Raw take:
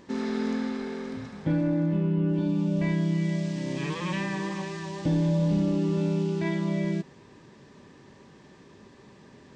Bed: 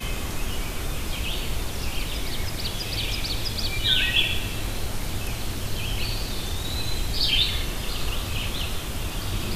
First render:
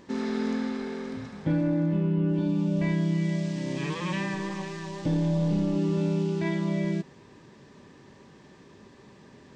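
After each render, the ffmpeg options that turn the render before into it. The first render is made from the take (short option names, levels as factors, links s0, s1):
-filter_complex "[0:a]asettb=1/sr,asplit=3[s0][s1][s2];[s0]atrim=end=4.344[s3];[s1]atrim=start=4.34:end=5.76,asetpts=PTS-STARTPTS,afade=t=in:d=0.004:c=qsin,afade=t=out:st=1.416:d=0.004:c=qsin,aeval=exprs='if(lt(val(0),0),0.708*val(0),val(0))':c=same[s4];[s2]atrim=start=5.756[s5];[s3][s4]acrossfade=d=0.004:c1=hsin:c2=qsin[s6];[s6][s5]acrossfade=d=0.004:c1=qsin:c2=hsin"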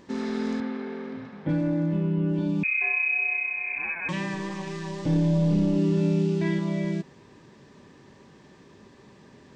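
-filter_complex "[0:a]asettb=1/sr,asplit=3[s0][s1][s2];[s0]atrim=end=0.604[s3];[s1]atrim=start=0.6:end=1.49,asetpts=PTS-STARTPTS,afade=t=in:d=0.004:c=qsin,afade=t=out:st=0.886:d=0.004:c=qsin,highpass=150,lowpass=2900[s4];[s2]atrim=start=1.486[s5];[s3][s4]acrossfade=d=0.004:c1=hsin:c2=qsin[s6];[s6][s5]acrossfade=d=0.004:c1=qsin:c2=hsin,asettb=1/sr,asplit=3[s7][s8][s9];[s7]atrim=end=2.634[s10];[s8]atrim=start=2.63:end=4.09,asetpts=PTS-STARTPTS,afade=t=in:d=0.004:c=qsin,afade=t=out:st=1.456:d=0.004:c=qsin,lowpass=f=2300:t=q:w=0.5098,lowpass=f=2300:t=q:w=0.6013,lowpass=f=2300:t=q:w=0.9,lowpass=f=2300:t=q:w=2.563,afreqshift=-2700[s11];[s9]atrim=start=4.086[s12];[s10][s11]acrossfade=d=0.004:c1=hsin:c2=qsin[s13];[s13][s12]acrossfade=d=0.004:c1=qsin:c2=hsin,asettb=1/sr,asplit=3[s14][s15][s16];[s14]atrim=end=4.644[s17];[s15]atrim=start=4.64:end=6.59,asetpts=PTS-STARTPTS,afade=t=in:d=0.004:c=qsin,afade=t=out:st=1.946:d=0.004:c=qsin,asplit=2[s18][s19];[s19]adelay=31,volume=0.531[s20];[s18][s20]amix=inputs=2:normalize=0,atrim=end_sample=85995[s21];[s16]atrim=start=6.586[s22];[s17][s21]acrossfade=d=0.004:c1=hsin:c2=qsin[s23];[s23][s22]acrossfade=d=0.004:c1=qsin:c2=hsin"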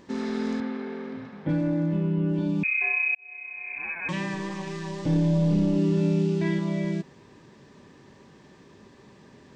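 -filter_complex "[0:a]asplit=2[s0][s1];[s0]atrim=end=3.15,asetpts=PTS-STARTPTS,afade=t=out:st=3.146:d=0.004:c=hsin[s2];[s1]atrim=start=3.15,asetpts=PTS-STARTPTS,afade=t=in:d=0.97[s3];[s2][s3]concat=n=2:v=0:a=1"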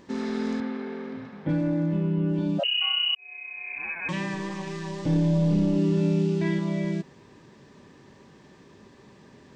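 -filter_complex "[0:a]asplit=3[s0][s1][s2];[s0]afade=t=out:st=2.58:d=0.02[s3];[s1]afreqshift=390,afade=t=in:st=2.58:d=0.02,afade=t=out:st=3.15:d=0.02[s4];[s2]afade=t=in:st=3.15:d=0.02[s5];[s3][s4][s5]amix=inputs=3:normalize=0"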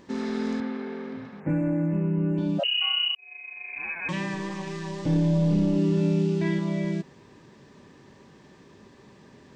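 -filter_complex "[0:a]asettb=1/sr,asplit=3[s0][s1][s2];[s0]atrim=end=1.404[s3];[s1]atrim=start=1.4:end=2.38,asetpts=PTS-STARTPTS,afade=t=in:d=0.004:c=qsin,afade=t=out:st=0.976:d=0.004:c=qsin,asuperstop=centerf=4300:order=12:qfactor=1.1[s4];[s2]atrim=start=2.376[s5];[s3][s4]acrossfade=d=0.004:c1=hsin:c2=qsin[s6];[s6][s5]acrossfade=d=0.004:c1=qsin:c2=hsin,asettb=1/sr,asplit=3[s7][s8][s9];[s7]atrim=end=3.074[s10];[s8]atrim=start=3.07:end=3.76,asetpts=PTS-STARTPTS,afade=t=in:d=0.004:c=qsin,afade=t=out:st=0.686:d=0.004:c=qsin,tremolo=f=24:d=0.462[s11];[s9]atrim=start=3.756[s12];[s10][s11]acrossfade=d=0.004:c1=hsin:c2=qsin[s13];[s13][s12]acrossfade=d=0.004:c1=qsin:c2=hsin"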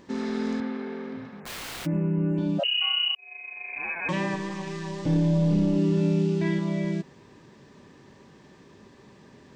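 -filter_complex "[0:a]asplit=3[s0][s1][s2];[s0]afade=t=out:st=1.42:d=0.02[s3];[s1]aeval=exprs='(mod(42.2*val(0)+1,2)-1)/42.2':c=same,afade=t=in:st=1.42:d=0.02,afade=t=out:st=1.85:d=0.02[s4];[s2]afade=t=in:st=1.85:d=0.02[s5];[s3][s4][s5]amix=inputs=3:normalize=0,asettb=1/sr,asplit=3[s6][s7][s8];[s6]atrim=end=3.074[s9];[s7]atrim=start=3.07:end=4.36,asetpts=PTS-STARTPTS,afade=t=in:d=0.004:c=qsin,afade=t=out:st=1.286:d=0.004:c=qsin,equalizer=f=590:t=o:w=2:g=6.5[s10];[s8]atrim=start=4.356[s11];[s9][s10]acrossfade=d=0.004:c1=hsin:c2=qsin[s12];[s12][s11]acrossfade=d=0.004:c1=qsin:c2=hsin"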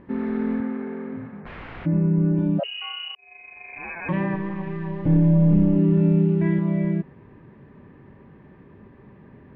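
-af "lowpass=f=2300:w=0.5412,lowpass=f=2300:w=1.3066,lowshelf=f=190:g=10.5"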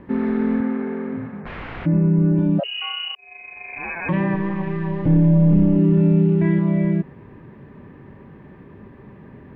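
-filter_complex "[0:a]asplit=2[s0][s1];[s1]alimiter=limit=0.112:level=0:latency=1,volume=0.841[s2];[s0][s2]amix=inputs=2:normalize=0,acrossover=split=390|3000[s3][s4][s5];[s4]acompressor=threshold=0.0631:ratio=6[s6];[s3][s6][s5]amix=inputs=3:normalize=0"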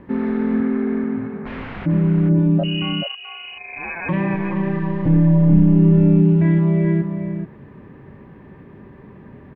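-filter_complex "[0:a]asplit=2[s0][s1];[s1]adelay=431.5,volume=0.501,highshelf=f=4000:g=-9.71[s2];[s0][s2]amix=inputs=2:normalize=0"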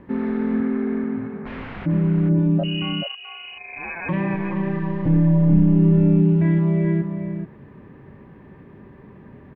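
-af "volume=0.75"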